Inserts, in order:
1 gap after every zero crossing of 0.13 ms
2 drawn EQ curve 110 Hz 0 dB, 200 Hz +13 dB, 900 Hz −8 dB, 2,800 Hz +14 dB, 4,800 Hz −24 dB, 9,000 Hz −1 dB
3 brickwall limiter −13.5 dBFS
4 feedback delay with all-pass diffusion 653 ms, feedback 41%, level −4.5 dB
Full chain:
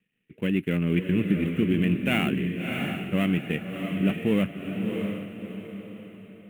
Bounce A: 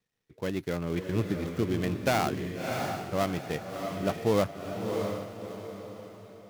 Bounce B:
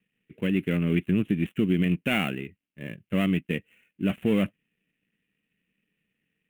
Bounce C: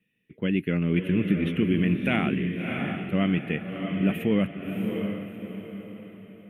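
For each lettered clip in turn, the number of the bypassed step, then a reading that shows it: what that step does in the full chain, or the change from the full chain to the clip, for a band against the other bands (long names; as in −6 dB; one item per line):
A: 2, 1 kHz band +11.5 dB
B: 4, echo-to-direct ratio −3.5 dB to none audible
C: 1, distortion level −13 dB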